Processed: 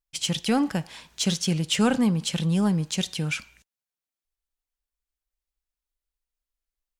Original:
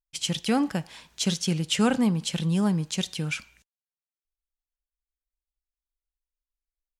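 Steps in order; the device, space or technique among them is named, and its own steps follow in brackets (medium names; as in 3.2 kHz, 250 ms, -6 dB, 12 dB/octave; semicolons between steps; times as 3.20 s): parallel distortion (in parallel at -9.5 dB: hard clipper -28.5 dBFS, distortion -6 dB)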